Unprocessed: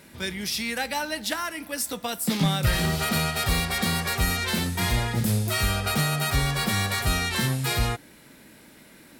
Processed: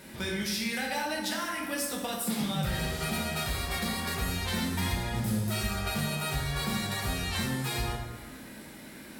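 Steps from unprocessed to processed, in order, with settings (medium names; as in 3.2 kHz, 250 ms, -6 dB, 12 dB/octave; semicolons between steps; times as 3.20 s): compression 4:1, threshold -34 dBFS, peak gain reduction 13.5 dB; plate-style reverb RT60 1.3 s, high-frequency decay 0.6×, DRR -2 dB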